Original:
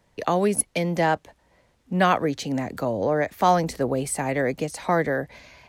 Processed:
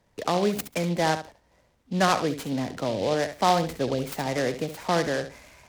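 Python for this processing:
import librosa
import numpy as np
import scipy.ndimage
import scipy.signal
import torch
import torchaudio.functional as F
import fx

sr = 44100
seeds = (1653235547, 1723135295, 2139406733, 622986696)

p1 = fx.high_shelf(x, sr, hz=8300.0, db=-12.0)
p2 = p1 + fx.echo_feedback(p1, sr, ms=69, feedback_pct=18, wet_db=-10.5, dry=0)
p3 = fx.noise_mod_delay(p2, sr, seeds[0], noise_hz=3400.0, depth_ms=0.05)
y = F.gain(torch.from_numpy(p3), -2.5).numpy()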